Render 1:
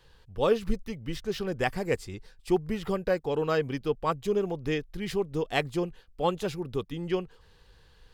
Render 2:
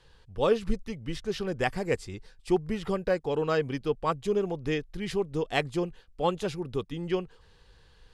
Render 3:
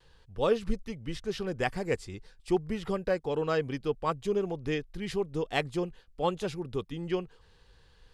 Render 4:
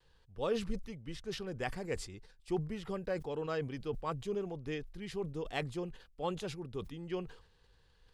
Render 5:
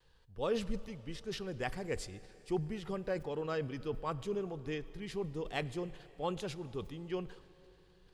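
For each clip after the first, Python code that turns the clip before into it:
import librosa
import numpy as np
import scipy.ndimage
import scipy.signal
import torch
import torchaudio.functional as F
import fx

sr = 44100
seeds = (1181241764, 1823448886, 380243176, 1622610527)

y1 = scipy.signal.sosfilt(scipy.signal.butter(4, 11000.0, 'lowpass', fs=sr, output='sos'), x)
y2 = fx.vibrato(y1, sr, rate_hz=0.39, depth_cents=15.0)
y2 = F.gain(torch.from_numpy(y2), -2.0).numpy()
y3 = fx.sustainer(y2, sr, db_per_s=100.0)
y3 = F.gain(torch.from_numpy(y3), -8.0).numpy()
y4 = fx.rev_plate(y3, sr, seeds[0], rt60_s=3.5, hf_ratio=0.9, predelay_ms=0, drr_db=16.5)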